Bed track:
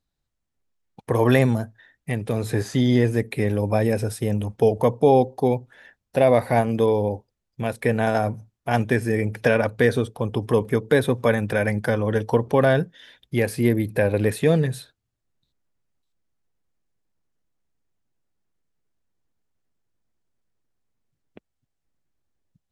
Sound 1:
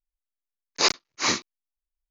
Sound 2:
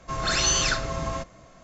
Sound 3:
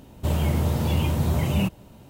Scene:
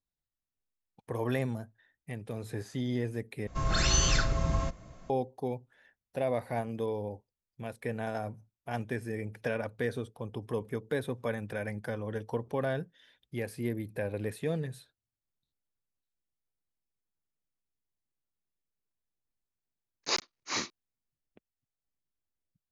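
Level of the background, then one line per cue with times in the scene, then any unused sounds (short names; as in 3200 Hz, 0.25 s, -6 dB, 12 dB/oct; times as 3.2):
bed track -14 dB
3.47 replace with 2 -5.5 dB + low shelf 200 Hz +11 dB
19.28 add 1 -9.5 dB
not used: 3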